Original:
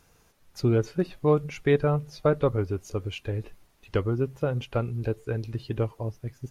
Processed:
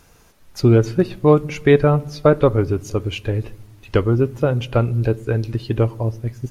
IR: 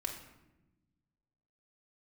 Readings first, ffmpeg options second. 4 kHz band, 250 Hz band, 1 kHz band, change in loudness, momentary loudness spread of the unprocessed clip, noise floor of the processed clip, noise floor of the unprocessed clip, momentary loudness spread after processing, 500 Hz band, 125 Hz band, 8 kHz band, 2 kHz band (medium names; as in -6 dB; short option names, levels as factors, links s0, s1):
+9.0 dB, +9.5 dB, +9.0 dB, +9.0 dB, 10 LU, -51 dBFS, -63 dBFS, 10 LU, +9.0 dB, +9.5 dB, no reading, +9.0 dB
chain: -filter_complex "[0:a]asplit=2[s0][s1];[s1]lowshelf=f=480:g=7[s2];[1:a]atrim=start_sample=2205[s3];[s2][s3]afir=irnorm=-1:irlink=0,volume=0.126[s4];[s0][s4]amix=inputs=2:normalize=0,volume=2.51"